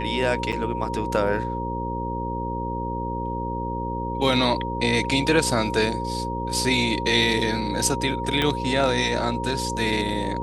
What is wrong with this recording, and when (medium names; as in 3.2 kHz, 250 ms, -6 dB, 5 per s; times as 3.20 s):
buzz 60 Hz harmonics 9 -30 dBFS
whine 940 Hz -29 dBFS
0.52–0.53 s: dropout 7 ms
8.42 s: pop -9 dBFS